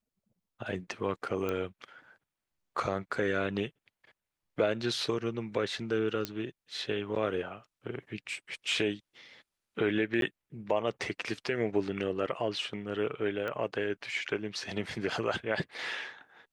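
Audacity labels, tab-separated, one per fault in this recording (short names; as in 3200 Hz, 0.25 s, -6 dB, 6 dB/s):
1.490000	1.490000	pop -20 dBFS
6.250000	6.250000	pop -16 dBFS
10.210000	10.220000	gap 12 ms
13.480000	13.480000	pop -23 dBFS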